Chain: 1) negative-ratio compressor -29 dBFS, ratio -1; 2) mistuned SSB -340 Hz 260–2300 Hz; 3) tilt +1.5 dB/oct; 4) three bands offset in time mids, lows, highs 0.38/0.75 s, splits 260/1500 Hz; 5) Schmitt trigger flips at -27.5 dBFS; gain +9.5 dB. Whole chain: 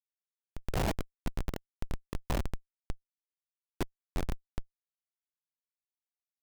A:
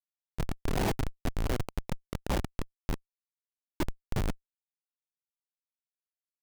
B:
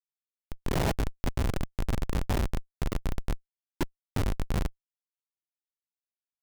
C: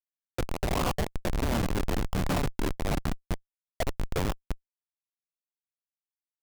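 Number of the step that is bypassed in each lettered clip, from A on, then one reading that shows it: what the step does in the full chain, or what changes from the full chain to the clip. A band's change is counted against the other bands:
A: 4, momentary loudness spread change -6 LU; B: 3, 125 Hz band +2.5 dB; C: 2, crest factor change -4.0 dB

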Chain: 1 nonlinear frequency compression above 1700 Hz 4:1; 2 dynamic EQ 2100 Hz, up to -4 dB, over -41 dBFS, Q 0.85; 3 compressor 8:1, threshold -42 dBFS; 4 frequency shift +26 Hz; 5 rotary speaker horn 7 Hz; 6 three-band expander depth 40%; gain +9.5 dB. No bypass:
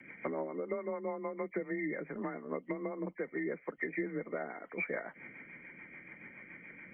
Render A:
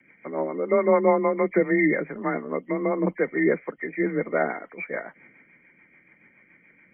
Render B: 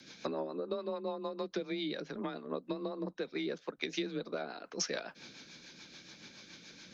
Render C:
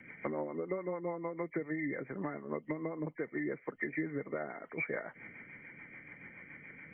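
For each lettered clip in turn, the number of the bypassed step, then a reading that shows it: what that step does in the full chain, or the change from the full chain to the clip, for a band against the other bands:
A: 3, crest factor change +1.5 dB; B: 1, 2 kHz band -5.0 dB; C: 4, 125 Hz band +3.5 dB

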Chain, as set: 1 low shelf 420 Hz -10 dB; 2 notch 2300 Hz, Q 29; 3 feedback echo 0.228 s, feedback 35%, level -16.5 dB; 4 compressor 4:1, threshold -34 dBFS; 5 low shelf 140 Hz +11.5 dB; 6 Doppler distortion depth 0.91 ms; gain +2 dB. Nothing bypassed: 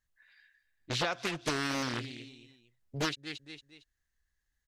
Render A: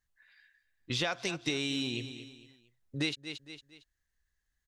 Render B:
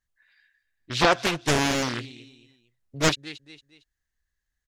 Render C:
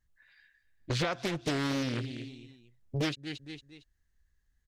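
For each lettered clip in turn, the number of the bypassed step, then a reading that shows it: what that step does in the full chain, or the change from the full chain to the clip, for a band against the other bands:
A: 6, 1 kHz band -6.5 dB; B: 4, mean gain reduction 5.5 dB; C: 1, 125 Hz band +7.5 dB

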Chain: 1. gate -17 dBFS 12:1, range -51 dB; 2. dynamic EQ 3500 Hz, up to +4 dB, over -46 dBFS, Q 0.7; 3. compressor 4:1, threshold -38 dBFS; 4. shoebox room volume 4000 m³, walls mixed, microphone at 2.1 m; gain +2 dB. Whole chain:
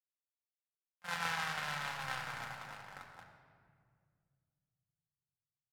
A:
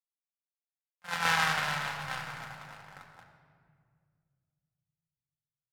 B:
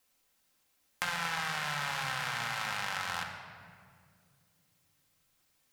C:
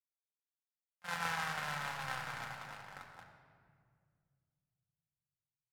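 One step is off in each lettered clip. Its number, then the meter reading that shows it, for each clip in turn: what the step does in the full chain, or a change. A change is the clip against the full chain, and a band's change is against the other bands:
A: 3, momentary loudness spread change +6 LU; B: 1, momentary loudness spread change -6 LU; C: 2, 4 kHz band -2.5 dB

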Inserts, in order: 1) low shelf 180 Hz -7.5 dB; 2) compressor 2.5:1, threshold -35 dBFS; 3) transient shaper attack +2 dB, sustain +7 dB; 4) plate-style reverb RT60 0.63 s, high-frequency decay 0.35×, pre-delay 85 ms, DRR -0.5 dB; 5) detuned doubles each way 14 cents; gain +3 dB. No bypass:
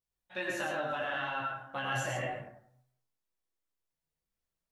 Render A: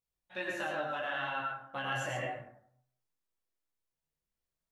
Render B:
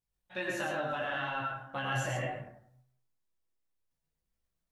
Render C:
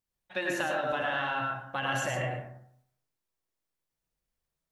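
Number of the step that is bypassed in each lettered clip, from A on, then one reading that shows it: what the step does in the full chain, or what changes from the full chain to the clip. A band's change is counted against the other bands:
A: 3, 8 kHz band -3.5 dB; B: 1, 125 Hz band +4.0 dB; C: 5, crest factor change +2.0 dB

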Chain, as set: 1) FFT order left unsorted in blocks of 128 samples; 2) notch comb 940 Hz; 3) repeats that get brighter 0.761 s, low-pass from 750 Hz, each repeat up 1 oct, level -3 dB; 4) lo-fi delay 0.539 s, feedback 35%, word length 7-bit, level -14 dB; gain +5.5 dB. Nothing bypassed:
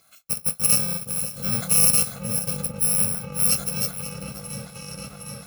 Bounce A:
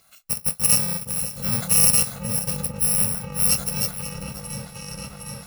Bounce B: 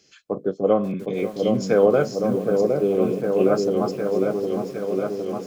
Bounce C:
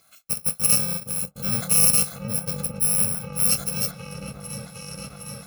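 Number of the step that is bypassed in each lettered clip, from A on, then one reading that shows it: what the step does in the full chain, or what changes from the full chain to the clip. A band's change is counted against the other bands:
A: 2, 500 Hz band -1.5 dB; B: 1, 4 kHz band -20.0 dB; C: 4, momentary loudness spread change +1 LU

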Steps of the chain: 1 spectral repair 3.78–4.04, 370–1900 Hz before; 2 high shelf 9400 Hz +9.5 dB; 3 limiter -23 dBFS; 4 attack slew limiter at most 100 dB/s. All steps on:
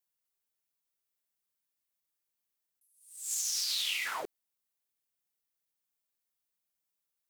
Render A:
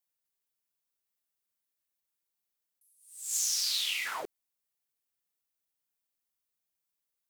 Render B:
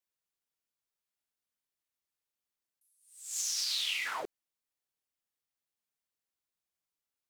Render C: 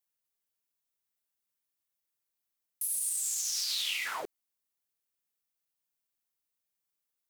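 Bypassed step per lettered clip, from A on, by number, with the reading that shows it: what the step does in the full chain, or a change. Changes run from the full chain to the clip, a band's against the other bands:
3, mean gain reduction 2.5 dB; 2, 8 kHz band -1.5 dB; 4, crest factor change -2.0 dB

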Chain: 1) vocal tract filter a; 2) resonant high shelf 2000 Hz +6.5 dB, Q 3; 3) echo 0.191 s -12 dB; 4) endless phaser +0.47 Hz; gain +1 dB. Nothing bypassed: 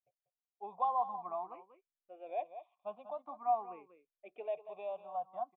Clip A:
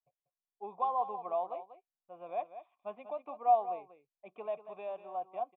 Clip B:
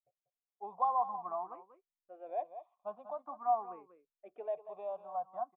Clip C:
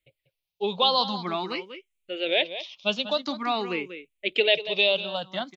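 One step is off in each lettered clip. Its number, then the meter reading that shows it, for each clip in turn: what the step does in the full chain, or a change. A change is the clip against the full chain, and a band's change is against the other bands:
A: 4, loudness change +3.5 LU; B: 2, loudness change +1.0 LU; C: 1, 1 kHz band -20.5 dB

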